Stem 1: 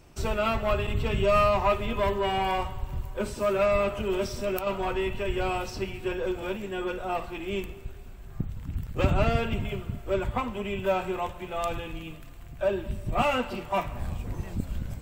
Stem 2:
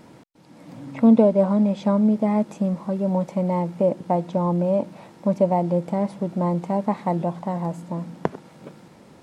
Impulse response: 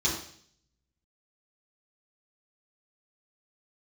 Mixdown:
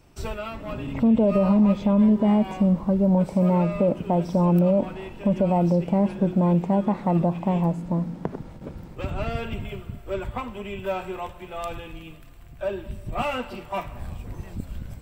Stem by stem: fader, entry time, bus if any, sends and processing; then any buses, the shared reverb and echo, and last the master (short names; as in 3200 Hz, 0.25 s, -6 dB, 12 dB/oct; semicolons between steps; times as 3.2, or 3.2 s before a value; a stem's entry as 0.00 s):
-2.0 dB, 0.00 s, no send, notch 6700 Hz, Q 13; auto duck -7 dB, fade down 0.25 s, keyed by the second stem
0.0 dB, 0.00 s, no send, gate with hold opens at -38 dBFS; tilt -2 dB/oct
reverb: off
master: limiter -11.5 dBFS, peak gain reduction 9.5 dB